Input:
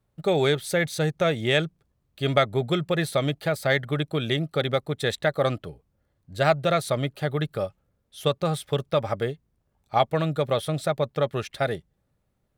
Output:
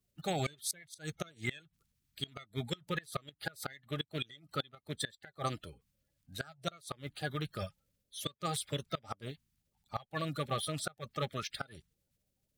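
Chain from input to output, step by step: coarse spectral quantiser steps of 30 dB; amplifier tone stack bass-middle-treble 5-5-5; inverted gate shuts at -29 dBFS, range -25 dB; trim +6.5 dB

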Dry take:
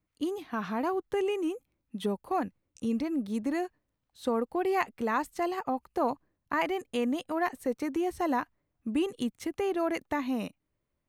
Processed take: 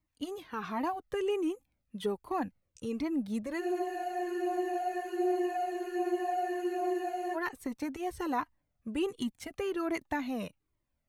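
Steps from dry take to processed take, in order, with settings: spectral freeze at 3.62 s, 3.74 s; Shepard-style flanger falling 1.3 Hz; trim +2.5 dB

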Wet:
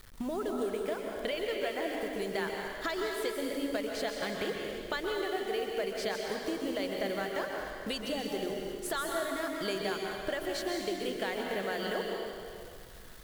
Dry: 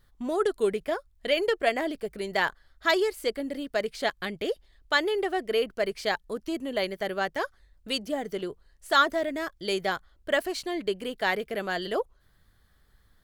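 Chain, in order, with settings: hum notches 60/120/180/240/300 Hz; in parallel at +2 dB: peak limiter -20 dBFS, peak gain reduction 10 dB; on the sum: compression 5:1, threshold -35 dBFS, peak gain reduction 19.5 dB; bit crusher 9-bit; plate-style reverb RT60 2.2 s, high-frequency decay 0.95×, pre-delay 115 ms, DRR 0 dB

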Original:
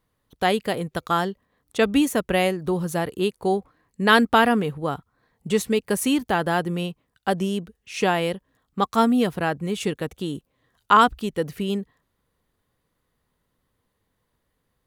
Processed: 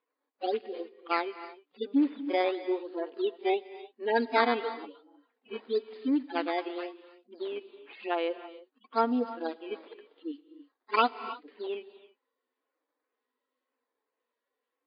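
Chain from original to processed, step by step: harmonic-percussive separation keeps harmonic; decimation with a swept rate 9×, swing 160% 0.95 Hz; brick-wall FIR high-pass 240 Hz; distance through air 170 m; reverberation, pre-delay 3 ms, DRR 14 dB; trim -4 dB; MP3 32 kbps 11.025 kHz

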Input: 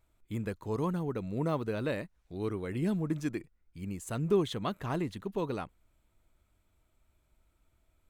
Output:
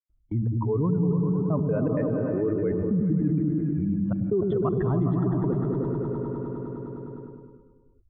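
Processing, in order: spectral contrast enhancement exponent 1.7; spectral noise reduction 16 dB; gate -56 dBFS, range -29 dB; peaking EQ 530 Hz -7 dB 2.2 oct; in parallel at +2 dB: peak limiter -34 dBFS, peak gain reduction 10.5 dB; on the sum: Gaussian low-pass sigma 5.3 samples; trance gate ".x.xx.xxxxxx.x." 160 bpm -60 dB; delay with an opening low-pass 102 ms, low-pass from 200 Hz, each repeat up 1 oct, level 0 dB; gated-style reverb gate 460 ms rising, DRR 10.5 dB; level flattener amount 70%; trim +3 dB

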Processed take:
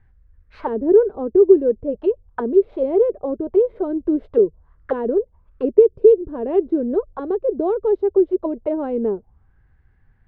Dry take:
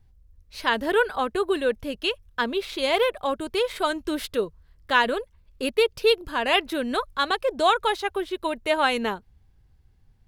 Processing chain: touch-sensitive low-pass 390–1800 Hz down, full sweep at -23.5 dBFS; trim +2 dB

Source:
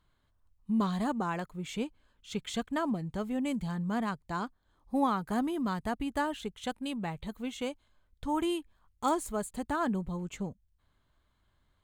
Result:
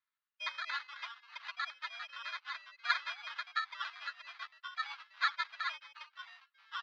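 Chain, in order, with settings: comb 4.8 ms, depth 59%; sample-rate reducer 1.5 kHz, jitter 0%; ever faster or slower copies 264 ms, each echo -4 st, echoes 3, each echo -6 dB; mistuned SSB +140 Hz 560–2500 Hz; speed mistake 45 rpm record played at 78 rpm; upward expansion 1.5:1, over -48 dBFS

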